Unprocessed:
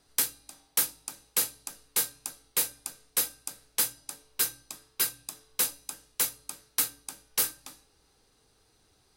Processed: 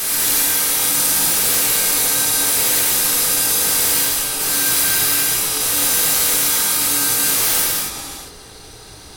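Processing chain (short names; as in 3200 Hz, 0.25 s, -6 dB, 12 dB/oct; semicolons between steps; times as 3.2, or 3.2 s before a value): stepped spectrum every 0.4 s; sine folder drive 18 dB, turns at -20 dBFS; non-linear reverb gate 0.31 s flat, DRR -6.5 dB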